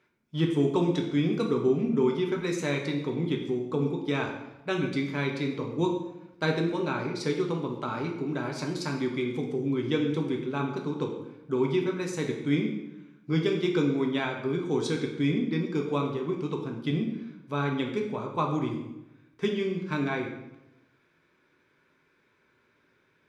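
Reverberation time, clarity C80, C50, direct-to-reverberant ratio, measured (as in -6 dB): 0.95 s, 8.0 dB, 5.5 dB, 0.5 dB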